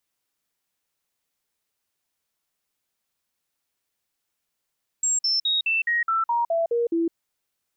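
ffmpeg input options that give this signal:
-f lavfi -i "aevalsrc='0.106*clip(min(mod(t,0.21),0.16-mod(t,0.21))/0.005,0,1)*sin(2*PI*7540*pow(2,-floor(t/0.21)/2)*mod(t,0.21))':d=2.1:s=44100"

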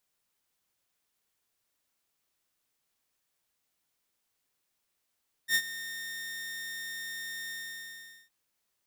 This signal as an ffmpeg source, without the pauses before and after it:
-f lavfi -i "aevalsrc='0.112*(2*mod(1830*t,1)-1)':d=2.815:s=44100,afade=t=in:d=0.07,afade=t=out:st=0.07:d=0.063:silence=0.168,afade=t=out:st=2.03:d=0.785"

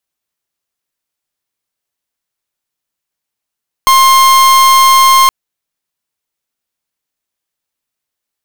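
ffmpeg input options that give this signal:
-f lavfi -i "aevalsrc='0.501*(2*lt(mod(1060*t,1),0.43)-1)':d=1.42:s=44100"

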